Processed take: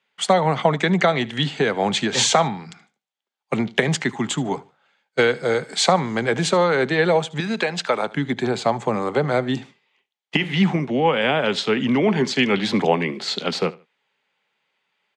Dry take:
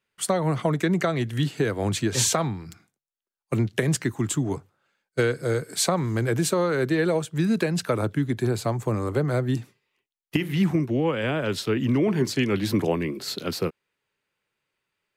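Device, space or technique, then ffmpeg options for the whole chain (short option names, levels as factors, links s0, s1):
television speaker: -filter_complex "[0:a]asettb=1/sr,asplit=3[s0][s1][s2];[s0]atrim=end=7.404[s3];[s1]atrim=start=7.4:end=8.13,asetpts=PTS-STARTPTS,afade=t=in:d=0.004:c=qsin,afade=t=out:st=0.726:d=0.004:c=qsin,highpass=f=490:p=1[s4];[s2]atrim=start=8.126[s5];[s3][s4]acrossfade=d=0.004:c1=hsin:c2=qsin[s6];[s6][s5]acrossfade=d=0.004:c1=qsin:c2=hsin,highpass=f=170:w=0.5412,highpass=f=170:w=1.3066,equalizer=f=320:t=q:w=4:g=-9,equalizer=f=810:t=q:w=4:g=8,equalizer=f=2100:t=q:w=4:g=4,equalizer=f=3300:t=q:w=4:g=6,equalizer=f=5500:t=q:w=4:g=-4,lowpass=f=6800:w=0.5412,lowpass=f=6800:w=1.3066,aecho=1:1:75|150:0.0891|0.0223,volume=2"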